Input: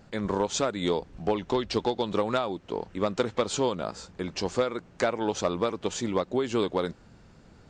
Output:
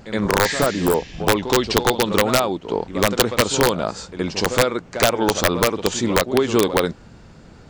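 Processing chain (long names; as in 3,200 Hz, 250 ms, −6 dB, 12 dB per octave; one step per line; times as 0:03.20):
backwards echo 70 ms −12 dB
wrap-around overflow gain 15.5 dB
healed spectral selection 0:00.47–0:01.20, 1,600–7,400 Hz both
level +9 dB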